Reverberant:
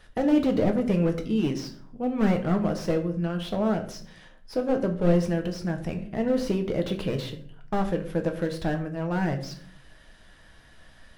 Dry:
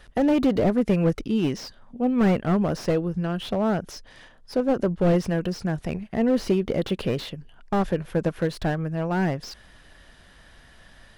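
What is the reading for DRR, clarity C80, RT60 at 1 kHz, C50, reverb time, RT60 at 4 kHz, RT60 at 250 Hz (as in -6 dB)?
4.0 dB, 15.0 dB, 0.45 s, 12.0 dB, 0.55 s, 0.35 s, 0.85 s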